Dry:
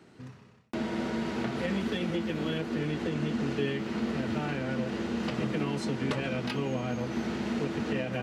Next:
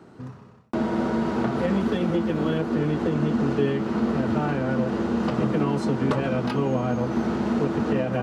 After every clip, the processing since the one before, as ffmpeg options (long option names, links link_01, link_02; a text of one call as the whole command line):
ffmpeg -i in.wav -af "highshelf=frequency=1600:width_type=q:width=1.5:gain=-7,volume=7.5dB" out.wav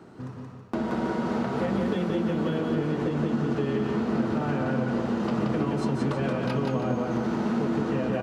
ffmpeg -i in.wav -filter_complex "[0:a]acompressor=threshold=-26dB:ratio=3,asplit=2[link_01][link_02];[link_02]aecho=0:1:176|323:0.708|0.266[link_03];[link_01][link_03]amix=inputs=2:normalize=0" out.wav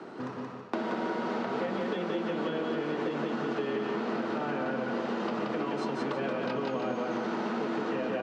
ffmpeg -i in.wav -filter_complex "[0:a]highpass=300,lowpass=4900,acrossover=split=460|1600[link_01][link_02][link_03];[link_01]acompressor=threshold=-42dB:ratio=4[link_04];[link_02]acompressor=threshold=-44dB:ratio=4[link_05];[link_03]acompressor=threshold=-52dB:ratio=4[link_06];[link_04][link_05][link_06]amix=inputs=3:normalize=0,volume=7.5dB" out.wav